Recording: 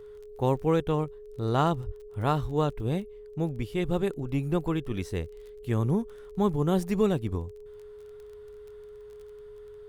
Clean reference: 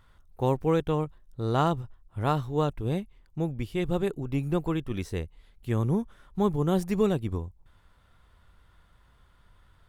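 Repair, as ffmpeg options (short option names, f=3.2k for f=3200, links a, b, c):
-filter_complex "[0:a]adeclick=t=4,bandreject=f=420:w=30,asplit=3[a][b][c];[a]afade=t=out:st=1.85:d=0.02[d];[b]highpass=f=140:w=0.5412,highpass=f=140:w=1.3066,afade=t=in:st=1.85:d=0.02,afade=t=out:st=1.97:d=0.02[e];[c]afade=t=in:st=1.97:d=0.02[f];[d][e][f]amix=inputs=3:normalize=0,asplit=3[g][h][i];[g]afade=t=out:st=2.41:d=0.02[j];[h]highpass=f=140:w=0.5412,highpass=f=140:w=1.3066,afade=t=in:st=2.41:d=0.02,afade=t=out:st=2.53:d=0.02[k];[i]afade=t=in:st=2.53:d=0.02[l];[j][k][l]amix=inputs=3:normalize=0"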